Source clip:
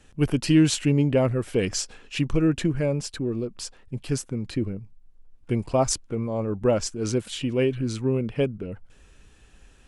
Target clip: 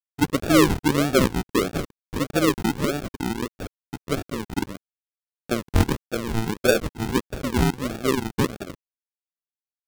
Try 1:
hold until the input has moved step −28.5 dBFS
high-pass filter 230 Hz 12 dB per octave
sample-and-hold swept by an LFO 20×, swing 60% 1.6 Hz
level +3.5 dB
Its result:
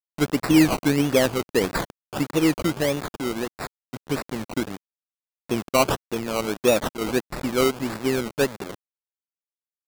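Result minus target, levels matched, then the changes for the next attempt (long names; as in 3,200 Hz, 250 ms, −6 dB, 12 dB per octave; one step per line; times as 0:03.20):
sample-and-hold swept by an LFO: distortion −18 dB
change: sample-and-hold swept by an LFO 61×, swing 60% 1.6 Hz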